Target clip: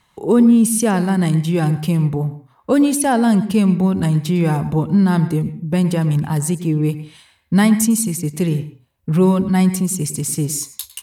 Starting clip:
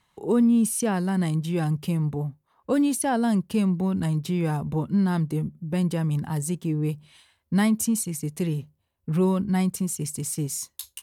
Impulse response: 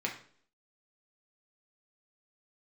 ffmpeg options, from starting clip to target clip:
-filter_complex "[0:a]asplit=2[link_01][link_02];[1:a]atrim=start_sample=2205,atrim=end_sample=6174,adelay=103[link_03];[link_02][link_03]afir=irnorm=-1:irlink=0,volume=-17dB[link_04];[link_01][link_04]amix=inputs=2:normalize=0,volume=8dB"

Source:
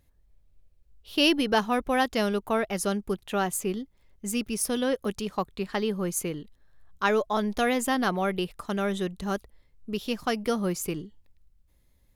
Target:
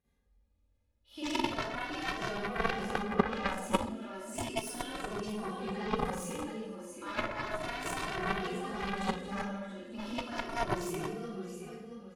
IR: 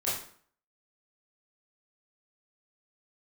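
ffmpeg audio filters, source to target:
-filter_complex "[0:a]highpass=frequency=110:poles=1,aecho=1:1:674|1348|2022|2696:0.282|0.093|0.0307|0.0101,alimiter=limit=-21dB:level=0:latency=1:release=20,asettb=1/sr,asplit=3[link_01][link_02][link_03];[link_01]atrim=end=2.724[link_04];[link_02]atrim=start=2.72:end=3.58,asetpts=PTS-STARTPTS,afade=type=in:duration=0.004:curve=qsin,afade=type=out:start_time=0.856:duration=0.004:curve=qsin,asplit=2[link_05][link_06];[link_06]highpass=frequency=720:poles=1,volume=19dB,asoftclip=type=tanh:threshold=-21dB[link_07];[link_05][link_07]amix=inputs=2:normalize=0,lowpass=frequency=1100:poles=1,volume=-6dB[link_08];[link_03]atrim=start=3.576[link_09];[link_04][link_08]acrossfade=duration=0.004:curve1=hsin:curve2=qsin[link_10];[link_10][link_09]acrossfade=duration=0.004:curve1=qsin:curve2=hsin,highshelf=frequency=5300:gain=-8[link_11];[1:a]atrim=start_sample=2205,asetrate=23814,aresample=44100[link_12];[link_11][link_12]afir=irnorm=-1:irlink=0,aeval=exprs='0.596*(cos(1*acos(clip(val(0)/0.596,-1,1)))-cos(1*PI/2))+0.266*(cos(3*acos(clip(val(0)/0.596,-1,1)))-cos(3*PI/2))':channel_layout=same,asettb=1/sr,asplit=3[link_13][link_14][link_15];[link_13]atrim=end=5.324[link_16];[link_14]atrim=start=5.32:end=6.05,asetpts=PTS-STARTPTS,afade=type=in:duration=0.004:curve=qsin,afade=type=out:start_time=0.726:duration=0.004:curve=qsin,acrossover=split=4800[link_17][link_18];[link_18]acompressor=threshold=-53dB:ratio=4:attack=1:release=60[link_19];[link_17][link_19]amix=inputs=2:normalize=0[link_20];[link_15]atrim=start=6.046[link_21];[link_16][link_20]acrossfade=duration=0.004:curve1=hsin:curve2=qsin[link_22];[link_22][link_21]acrossfade=duration=0.004:curve1=qsin:curve2=hsin,asplit=2[link_23][link_24];[link_24]adelay=2.1,afreqshift=0.34[link_25];[link_23][link_25]amix=inputs=2:normalize=1,volume=-1.5dB"

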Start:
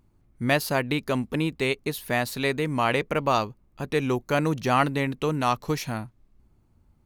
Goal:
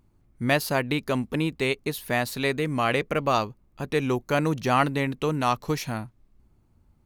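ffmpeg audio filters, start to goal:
ffmpeg -i in.wav -filter_complex "[0:a]asettb=1/sr,asplit=3[link_01][link_02][link_03];[link_01]atrim=end=2.524[link_04];[link_02]atrim=start=2.52:end=3.34,asetpts=PTS-STARTPTS,afade=type=in:duration=0.004:curve=qsin,afade=type=out:start_time=0.816:duration=0.004:curve=qsin,bandreject=frequency=920:width=9.1[link_05];[link_03]atrim=start=3.336[link_06];[link_04][link_05]acrossfade=duration=0.004:curve1=hsin:curve2=qsin[link_07];[link_07][link_06]acrossfade=duration=0.004:curve1=qsin:curve2=hsin" out.wav

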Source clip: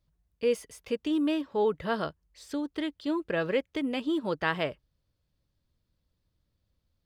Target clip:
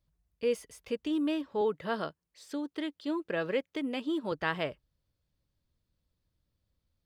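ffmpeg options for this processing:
ffmpeg -i in.wav -filter_complex "[0:a]asettb=1/sr,asplit=3[link_01][link_02][link_03];[link_01]atrim=end=1.614[link_04];[link_02]atrim=start=1.61:end=4.32,asetpts=PTS-STARTPTS,afade=type=in:duration=0.004:curve=qsin,afade=type=out:start_time=2.706:duration=0.004:curve=qsin,highpass=150[link_05];[link_03]atrim=start=4.316[link_06];[link_04][link_05]acrossfade=duration=0.004:curve1=hsin:curve2=qsin[link_07];[link_07][link_06]acrossfade=duration=0.004:curve1=qsin:curve2=hsin,volume=-3dB" out.wav

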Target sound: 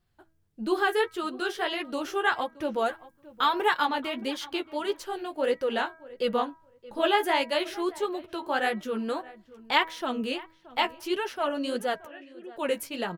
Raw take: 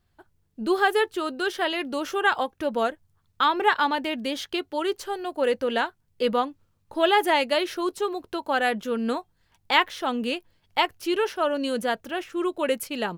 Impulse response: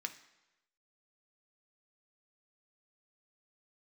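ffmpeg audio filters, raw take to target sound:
-filter_complex "[0:a]asettb=1/sr,asplit=3[link_01][link_02][link_03];[link_01]atrim=end=2.864[link_04];[link_02]atrim=start=2.86:end=3.86,asetpts=PTS-STARTPTS,afade=type=in:duration=0.004:curve=qsin,afade=type=out:start_time=0.996:duration=0.004:curve=qsin,highshelf=frequency=7500:gain=10.5[link_05];[link_03]atrim=start=3.856[link_06];[link_04][link_05]acrossfade=duration=0.004:curve1=hsin:curve2=qsin[link_07];[link_07][link_06]acrossfade=duration=0.004:curve1=qsin:curve2=hsin,asettb=1/sr,asplit=3[link_08][link_09][link_10];[link_08]atrim=end=12.054[link_11];[link_09]atrim=start=12.05:end=12.56,asetpts=PTS-STARTPTS,afade=type=in:duration=0.004:curve=qsin,afade=type=out:start_time=0.506:duration=0.004:curve=qsin,asplit=3[link_12][link_13][link_14];[link_12]bandpass=frequency=530:width_type=q:width=8,volume=0dB[link_15];[link_13]bandpass=frequency=1840:width_type=q:width=8,volume=-6dB[link_16];[link_14]bandpass=frequency=2480:width_type=q:width=8,volume=-9dB[link_17];[link_15][link_16][link_17]amix=inputs=3:normalize=0[link_18];[link_10]atrim=start=12.556[link_19];[link_11][link_18]acrossfade=duration=0.004:curve1=hsin:curve2=qsin[link_20];[link_20][link_19]acrossfade=duration=0.004:curve1=qsin:curve2=hsin,flanger=delay=5.5:depth=9.5:regen=-19:speed=1.6:shape=sinusoidal,bandreject=frequency=322.7:width_type=h:width=4,bandreject=frequency=645.4:width_type=h:width=4,bandreject=frequency=968.1:width_type=h:width=4,bandreject=frequency=1290.8:width_type=h:width=4,bandreject=frequency=1613.5:width_type=h:width=4,bandreject=frequency=1936.2:width_type=h:width=4,bandreject=frequency=2258.9:width_type=h:width=4,asplit=2[link_21][link_22];[link_22]adelay=624,lowpass=frequency=1900:poles=1,volume=-19dB,asplit=2[link_23][link_24];[link_24]adelay=624,lowpass=frequency=1900:poles=1,volume=0.18[link_25];[link_23][link_25]amix=inputs=2:normalize=0[link_26];[link_21][link_26]amix=inputs=2:normalize=0"

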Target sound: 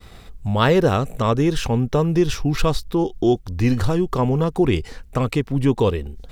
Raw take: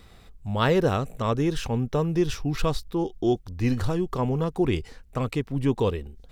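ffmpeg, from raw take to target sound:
ffmpeg -i in.wav -filter_complex "[0:a]agate=range=-33dB:threshold=-47dB:ratio=3:detection=peak,asplit=2[link_01][link_02];[link_02]acompressor=threshold=-33dB:ratio=6,volume=1.5dB[link_03];[link_01][link_03]amix=inputs=2:normalize=0,volume=3.5dB" out.wav

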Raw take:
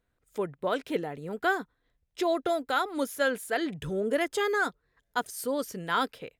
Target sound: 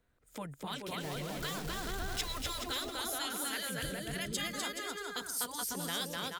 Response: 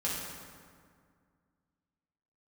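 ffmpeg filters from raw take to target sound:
-filter_complex "[0:a]asettb=1/sr,asplit=3[link_01][link_02][link_03];[link_01]atrim=end=1.004[link_04];[link_02]atrim=start=1:end=2.66,asetpts=PTS-STARTPTS,afade=type=in:duration=0.004:curve=qsin,afade=type=out:start_time=1.656:duration=0.004:curve=qsin,aeval=exprs='val(0)+0.5*0.0158*sgn(val(0))':channel_layout=same[link_05];[link_03]atrim=start=2.656[link_06];[link_04][link_05]acrossfade=duration=0.004:curve1=hsin:curve2=qsin[link_07];[link_07][link_06]acrossfade=duration=0.004:curve1=qsin:curve2=hsin,asettb=1/sr,asplit=3[link_08][link_09][link_10];[link_08]atrim=end=3.764[link_11];[link_09]atrim=start=3.76:end=4.64,asetpts=PTS-STARTPTS,afade=type=in:duration=0.004:curve=qsin,afade=type=out:start_time=0.876:duration=0.004:curve=qsin,equalizer=frequency=800:width_type=o:width=0.65:gain=-10[link_12];[link_10]atrim=start=4.636[link_13];[link_11][link_12]acrossfade=duration=0.004:curve1=hsin:curve2=qsin[link_14];[link_14][link_13]acrossfade=duration=0.004:curve1=qsin:curve2=hsin,aecho=1:1:250|425|547.5|633.2|693.3:0.631|0.398|0.251|0.158|0.1,afftfilt=real='re*lt(hypot(re,im),0.2)':imag='im*lt(hypot(re,im),0.2)':win_size=1024:overlap=0.75,acrossover=split=130|3000[link_15][link_16][link_17];[link_16]acompressor=threshold=-47dB:ratio=2.5[link_18];[link_15][link_18][link_17]amix=inputs=3:normalize=0,volume=2.5dB"

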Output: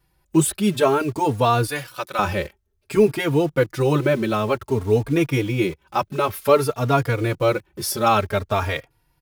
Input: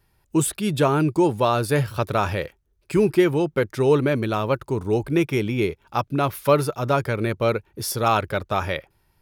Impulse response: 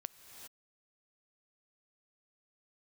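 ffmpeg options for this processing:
-filter_complex "[0:a]asettb=1/sr,asplit=3[link_01][link_02][link_03];[link_01]atrim=end=1.664[link_04];[link_02]atrim=start=1.66:end=2.19,asetpts=PTS-STARTPTS,afade=type=in:duration=0.004:curve=qsin,afade=type=out:start_time=0.526:duration=0.004:curve=qsin,highpass=frequency=1300:poles=1[link_05];[link_03]atrim=start=2.186[link_06];[link_04][link_05]acrossfade=duration=0.004:curve1=hsin:curve2=qsin[link_07];[link_07][link_06]acrossfade=duration=0.004:curve1=qsin:curve2=hsin,asplit=2[link_08][link_09];[link_09]acrusher=bits=5:mix=0:aa=0.000001,volume=-7.5dB[link_10];[link_08][link_10]amix=inputs=2:normalize=0,asplit=2[link_11][link_12];[link_12]adelay=3.6,afreqshift=0.54[link_13];[link_11][link_13]amix=inputs=2:normalize=1,volume=2dB"

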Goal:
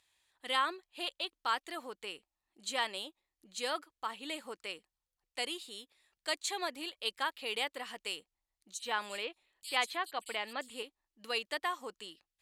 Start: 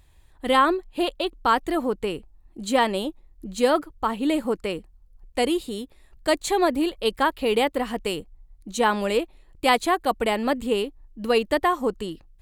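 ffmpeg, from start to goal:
ffmpeg -i in.wav -filter_complex "[0:a]bandpass=frequency=4500:width_type=q:width=0.57:csg=0,asettb=1/sr,asplit=3[link_01][link_02][link_03];[link_01]atrim=end=8.744[link_04];[link_02]atrim=start=8.74:end=10.83,asetpts=PTS-STARTPTS,afade=type=in:duration=0.004:curve=qsin,afade=type=out:start_time=2.086:duration=0.004:curve=qsin,acrossover=split=4600[link_05][link_06];[link_05]adelay=80[link_07];[link_07][link_06]amix=inputs=2:normalize=0,atrim=end_sample=92169[link_08];[link_03]atrim=start=10.826[link_09];[link_04][link_08]acrossfade=duration=0.004:curve1=hsin:curve2=qsin[link_10];[link_10][link_09]acrossfade=duration=0.004:curve1=qsin:curve2=hsin,volume=-5dB" out.wav

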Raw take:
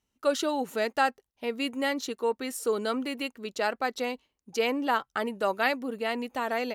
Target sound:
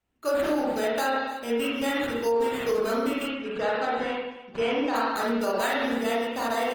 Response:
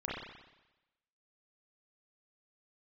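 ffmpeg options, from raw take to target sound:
-filter_complex "[0:a]acrusher=samples=8:mix=1:aa=0.000001,aecho=1:1:303:0.112[link_01];[1:a]atrim=start_sample=2205,afade=type=out:start_time=0.43:duration=0.01,atrim=end_sample=19404[link_02];[link_01][link_02]afir=irnorm=-1:irlink=0,alimiter=limit=-17dB:level=0:latency=1:release=53,asettb=1/sr,asplit=3[link_03][link_04][link_05];[link_03]atrim=end=3.354[link_06];[link_04]atrim=start=3.35:end=4.96,asetpts=PTS-STARTPTS,afade=type=in:duration=0.004:curve=qsin,afade=type=out:start_time=1.606:duration=0.004:curve=qsin,lowpass=3800[link_07];[link_05]atrim=start=4.956[link_08];[link_06][link_07]acrossfade=duration=0.004:curve1=hsin:curve2=qsin[link_09];[link_09][link_08]acrossfade=duration=0.004:curve1=qsin:curve2=hsin" -ar 48000 -c:a libopus -b:a 20k

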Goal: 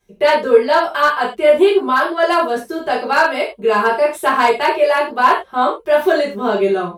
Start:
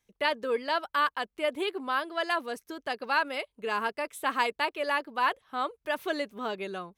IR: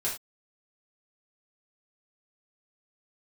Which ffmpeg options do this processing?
-filter_complex "[1:a]atrim=start_sample=2205[link_01];[0:a][link_01]afir=irnorm=-1:irlink=0,acrossover=split=1100[link_02][link_03];[link_02]acontrast=69[link_04];[link_03]asoftclip=type=hard:threshold=-21dB[link_05];[link_04][link_05]amix=inputs=2:normalize=0,volume=5dB"

